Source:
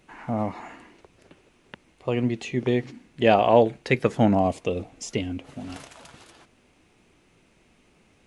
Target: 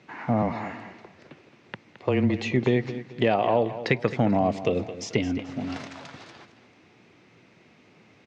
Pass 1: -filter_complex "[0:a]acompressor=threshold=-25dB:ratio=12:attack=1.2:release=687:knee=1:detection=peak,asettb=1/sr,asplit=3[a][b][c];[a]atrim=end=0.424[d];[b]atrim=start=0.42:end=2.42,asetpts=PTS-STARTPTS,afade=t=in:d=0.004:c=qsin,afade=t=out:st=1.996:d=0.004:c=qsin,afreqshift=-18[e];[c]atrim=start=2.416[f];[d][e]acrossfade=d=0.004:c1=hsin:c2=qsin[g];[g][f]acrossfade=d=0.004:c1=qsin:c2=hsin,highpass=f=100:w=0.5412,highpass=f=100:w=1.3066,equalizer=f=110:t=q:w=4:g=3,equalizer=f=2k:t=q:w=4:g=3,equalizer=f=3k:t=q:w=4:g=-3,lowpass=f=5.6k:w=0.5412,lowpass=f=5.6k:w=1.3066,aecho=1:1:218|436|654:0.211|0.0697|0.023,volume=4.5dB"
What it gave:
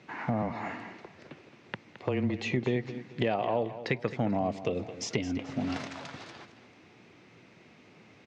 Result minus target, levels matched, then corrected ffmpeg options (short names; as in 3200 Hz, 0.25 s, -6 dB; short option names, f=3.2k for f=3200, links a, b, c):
compressor: peak gain reduction +7 dB
-filter_complex "[0:a]acompressor=threshold=-17.5dB:ratio=12:attack=1.2:release=687:knee=1:detection=peak,asettb=1/sr,asplit=3[a][b][c];[a]atrim=end=0.424[d];[b]atrim=start=0.42:end=2.42,asetpts=PTS-STARTPTS,afade=t=in:d=0.004:c=qsin,afade=t=out:st=1.996:d=0.004:c=qsin,afreqshift=-18[e];[c]atrim=start=2.416[f];[d][e]acrossfade=d=0.004:c1=hsin:c2=qsin[g];[g][f]acrossfade=d=0.004:c1=qsin:c2=hsin,highpass=f=100:w=0.5412,highpass=f=100:w=1.3066,equalizer=f=110:t=q:w=4:g=3,equalizer=f=2k:t=q:w=4:g=3,equalizer=f=3k:t=q:w=4:g=-3,lowpass=f=5.6k:w=0.5412,lowpass=f=5.6k:w=1.3066,aecho=1:1:218|436|654:0.211|0.0697|0.023,volume=4.5dB"